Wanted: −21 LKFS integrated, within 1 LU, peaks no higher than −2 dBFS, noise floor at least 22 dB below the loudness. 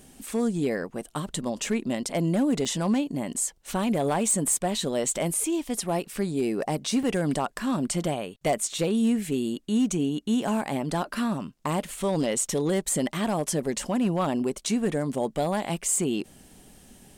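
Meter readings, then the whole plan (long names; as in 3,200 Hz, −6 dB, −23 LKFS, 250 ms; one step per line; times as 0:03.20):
share of clipped samples 0.5%; peaks flattened at −17.5 dBFS; number of dropouts 3; longest dropout 2.8 ms; integrated loudness −27.0 LKFS; sample peak −17.5 dBFS; target loudness −21.0 LKFS
→ clipped peaks rebuilt −17.5 dBFS
repair the gap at 0:02.65/0:07.03/0:14.67, 2.8 ms
level +6 dB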